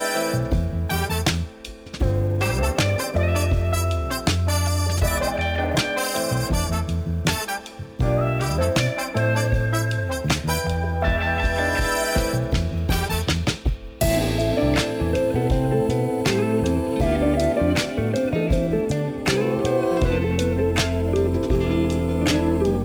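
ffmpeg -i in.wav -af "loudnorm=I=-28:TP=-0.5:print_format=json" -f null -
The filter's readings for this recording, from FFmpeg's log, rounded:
"input_i" : "-22.1",
"input_tp" : "-8.7",
"input_lra" : "1.9",
"input_thresh" : "-32.2",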